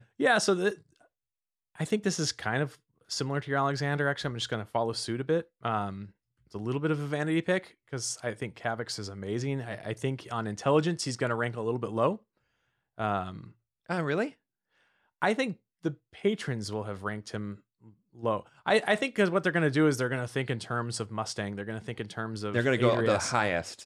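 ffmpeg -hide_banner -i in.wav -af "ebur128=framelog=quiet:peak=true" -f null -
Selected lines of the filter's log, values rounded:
Integrated loudness:
  I:         -30.2 LUFS
  Threshold: -40.7 LUFS
Loudness range:
  LRA:         5.1 LU
  Threshold: -51.3 LUFS
  LRA low:   -33.6 LUFS
  LRA high:  -28.5 LUFS
True peak:
  Peak:      -11.9 dBFS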